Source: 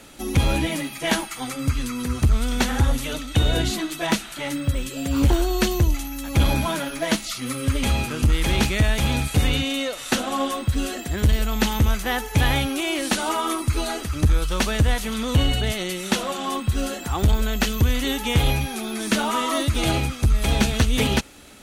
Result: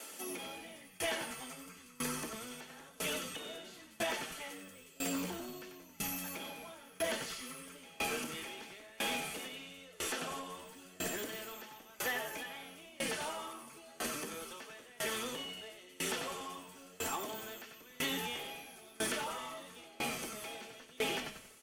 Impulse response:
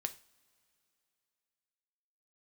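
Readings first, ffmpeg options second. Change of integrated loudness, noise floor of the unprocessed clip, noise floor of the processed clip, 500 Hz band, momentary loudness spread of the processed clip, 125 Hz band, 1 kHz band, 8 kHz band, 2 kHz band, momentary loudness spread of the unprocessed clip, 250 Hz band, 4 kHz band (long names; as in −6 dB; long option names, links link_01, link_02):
−17.0 dB, −36 dBFS, −58 dBFS, −14.5 dB, 14 LU, −32.5 dB, −15.5 dB, −11.5 dB, −13.0 dB, 6 LU, −21.0 dB, −14.5 dB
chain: -filter_complex "[0:a]highpass=frequency=310:width=0.5412,highpass=frequency=310:width=1.3066,acrossover=split=4200[link_01][link_02];[link_02]acompressor=threshold=-39dB:ratio=4:attack=1:release=60[link_03];[link_01][link_03]amix=inputs=2:normalize=0,bandreject=frequency=3900:width=8,flanger=delay=8.9:depth=7.2:regen=68:speed=1:shape=triangular,highshelf=frequency=5400:gain=9.5,asplit=6[link_04][link_05][link_06][link_07][link_08][link_09];[link_05]adelay=92,afreqshift=-94,volume=-6dB[link_10];[link_06]adelay=184,afreqshift=-188,volume=-14.2dB[link_11];[link_07]adelay=276,afreqshift=-282,volume=-22.4dB[link_12];[link_08]adelay=368,afreqshift=-376,volume=-30.5dB[link_13];[link_09]adelay=460,afreqshift=-470,volume=-38.7dB[link_14];[link_04][link_10][link_11][link_12][link_13][link_14]amix=inputs=6:normalize=0[link_15];[1:a]atrim=start_sample=2205[link_16];[link_15][link_16]afir=irnorm=-1:irlink=0,alimiter=limit=-22.5dB:level=0:latency=1:release=291,aecho=1:1:4.5:0.39,asoftclip=type=tanh:threshold=-27.5dB,aeval=exprs='val(0)*pow(10,-25*if(lt(mod(1*n/s,1),2*abs(1)/1000),1-mod(1*n/s,1)/(2*abs(1)/1000),(mod(1*n/s,1)-2*abs(1)/1000)/(1-2*abs(1)/1000))/20)':channel_layout=same,volume=1.5dB"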